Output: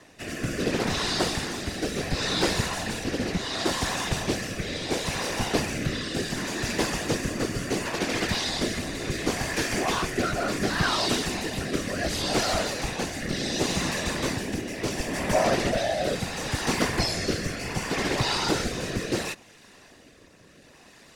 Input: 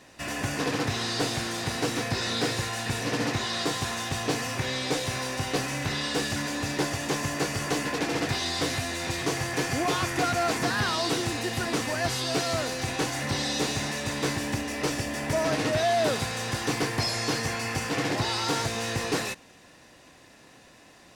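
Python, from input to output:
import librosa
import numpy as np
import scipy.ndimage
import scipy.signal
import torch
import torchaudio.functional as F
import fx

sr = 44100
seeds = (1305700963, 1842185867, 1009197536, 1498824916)

y = fx.whisperise(x, sr, seeds[0])
y = fx.rotary(y, sr, hz=0.7)
y = F.gain(torch.from_numpy(y), 3.0).numpy()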